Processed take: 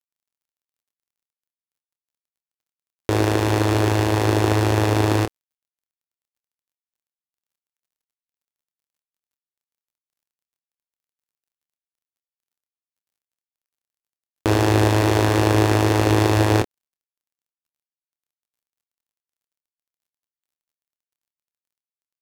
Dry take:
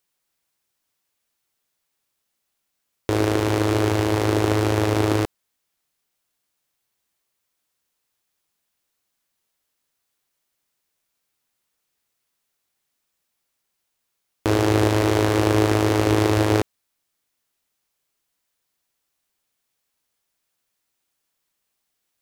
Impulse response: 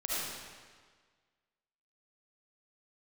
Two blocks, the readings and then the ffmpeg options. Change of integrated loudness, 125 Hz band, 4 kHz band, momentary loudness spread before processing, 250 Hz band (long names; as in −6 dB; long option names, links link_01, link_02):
+1.5 dB, +3.5 dB, +1.5 dB, 6 LU, +0.5 dB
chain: -filter_complex "[0:a]acrusher=bits=10:mix=0:aa=0.000001,asplit=2[link_01][link_02];[link_02]adelay=27,volume=-9.5dB[link_03];[link_01][link_03]amix=inputs=2:normalize=0,volume=1.5dB"